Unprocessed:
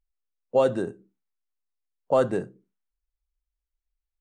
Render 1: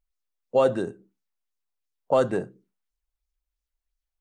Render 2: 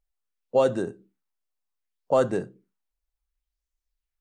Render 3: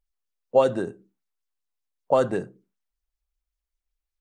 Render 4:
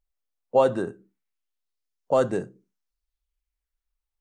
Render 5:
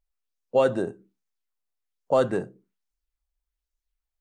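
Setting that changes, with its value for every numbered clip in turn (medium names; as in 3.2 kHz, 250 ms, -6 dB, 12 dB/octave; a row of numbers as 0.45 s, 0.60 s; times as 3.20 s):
sweeping bell, rate: 2.9 Hz, 0.67 Hz, 5.2 Hz, 0.21 Hz, 1.2 Hz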